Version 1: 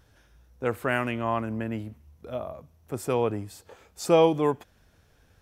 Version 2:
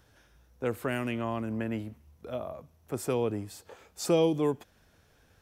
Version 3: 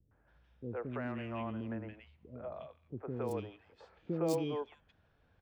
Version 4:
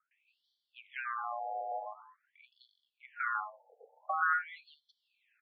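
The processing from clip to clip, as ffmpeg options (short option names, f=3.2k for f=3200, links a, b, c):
-filter_complex "[0:a]lowshelf=f=110:g=-6,acrossover=split=460|3000[a][b][c];[b]acompressor=threshold=-35dB:ratio=6[d];[a][d][c]amix=inputs=3:normalize=0"
-filter_complex "[0:a]acrossover=split=380|990|3600[a][b][c][d];[d]acrusher=bits=4:mix=0:aa=0.5[e];[a][b][c][e]amix=inputs=4:normalize=0,acrossover=split=380|2100[f][g][h];[g]adelay=110[i];[h]adelay=280[j];[f][i][j]amix=inputs=3:normalize=0,volume=-6dB"
-af "aeval=exprs='val(0)*sin(2*PI*950*n/s)':c=same,afftfilt=real='re*between(b*sr/1024,590*pow(4300/590,0.5+0.5*sin(2*PI*0.46*pts/sr))/1.41,590*pow(4300/590,0.5+0.5*sin(2*PI*0.46*pts/sr))*1.41)':imag='im*between(b*sr/1024,590*pow(4300/590,0.5+0.5*sin(2*PI*0.46*pts/sr))/1.41,590*pow(4300/590,0.5+0.5*sin(2*PI*0.46*pts/sr))*1.41)':win_size=1024:overlap=0.75,volume=8.5dB"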